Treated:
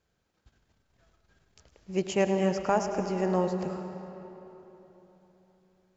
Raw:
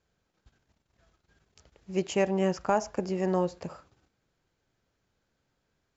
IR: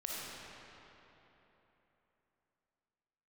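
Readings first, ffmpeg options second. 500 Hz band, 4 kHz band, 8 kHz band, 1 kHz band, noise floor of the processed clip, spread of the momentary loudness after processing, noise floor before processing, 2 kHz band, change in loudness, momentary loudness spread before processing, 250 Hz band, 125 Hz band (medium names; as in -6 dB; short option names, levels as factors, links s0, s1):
+1.0 dB, +0.5 dB, no reading, +1.0 dB, -76 dBFS, 17 LU, -79 dBFS, +1.0 dB, 0.0 dB, 7 LU, +1.0 dB, +1.5 dB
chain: -filter_complex "[0:a]asplit=2[s0][s1];[1:a]atrim=start_sample=2205,adelay=106[s2];[s1][s2]afir=irnorm=-1:irlink=0,volume=0.355[s3];[s0][s3]amix=inputs=2:normalize=0"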